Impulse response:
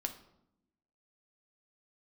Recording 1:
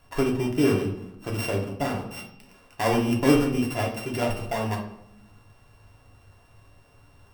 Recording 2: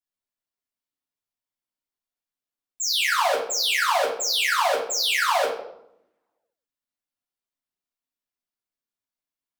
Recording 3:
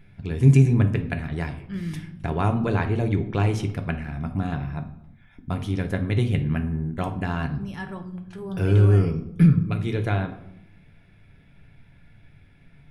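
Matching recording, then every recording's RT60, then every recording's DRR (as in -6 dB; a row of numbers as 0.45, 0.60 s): 3; 0.80, 0.80, 0.80 s; -1.5, -7.5, 5.0 dB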